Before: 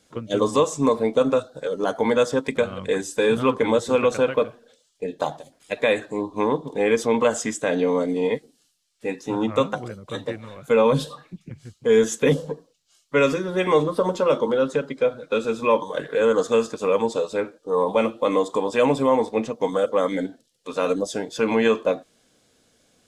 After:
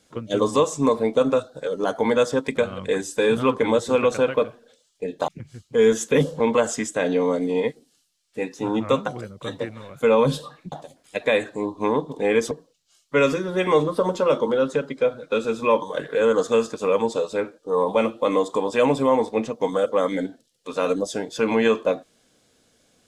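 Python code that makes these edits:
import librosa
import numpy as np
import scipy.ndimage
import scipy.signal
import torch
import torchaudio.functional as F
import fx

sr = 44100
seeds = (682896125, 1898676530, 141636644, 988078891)

y = fx.edit(x, sr, fx.swap(start_s=5.28, length_s=1.79, other_s=11.39, other_length_s=1.12), tone=tone)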